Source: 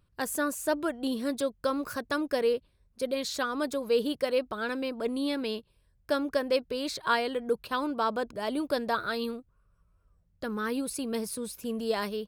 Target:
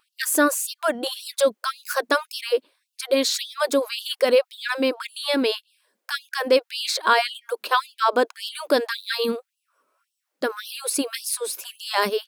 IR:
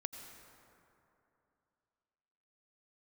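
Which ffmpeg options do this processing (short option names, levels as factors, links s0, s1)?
-af "alimiter=level_in=8.41:limit=0.891:release=50:level=0:latency=1,afftfilt=real='re*gte(b*sr/1024,210*pow(2700/210,0.5+0.5*sin(2*PI*1.8*pts/sr)))':imag='im*gte(b*sr/1024,210*pow(2700/210,0.5+0.5*sin(2*PI*1.8*pts/sr)))':win_size=1024:overlap=0.75,volume=0.473"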